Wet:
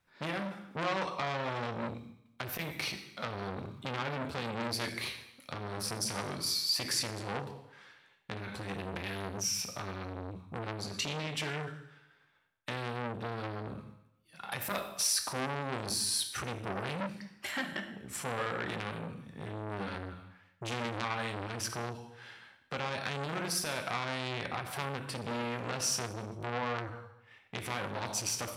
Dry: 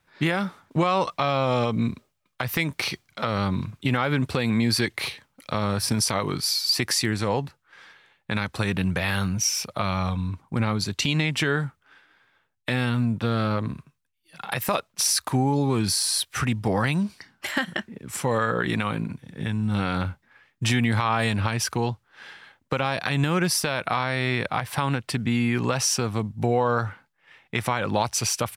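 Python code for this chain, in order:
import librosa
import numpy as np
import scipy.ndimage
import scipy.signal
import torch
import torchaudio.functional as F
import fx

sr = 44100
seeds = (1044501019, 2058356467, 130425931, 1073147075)

y = fx.rev_plate(x, sr, seeds[0], rt60_s=0.81, hf_ratio=0.95, predelay_ms=0, drr_db=5.0)
y = fx.transformer_sat(y, sr, knee_hz=2400.0)
y = F.gain(torch.from_numpy(y), -8.0).numpy()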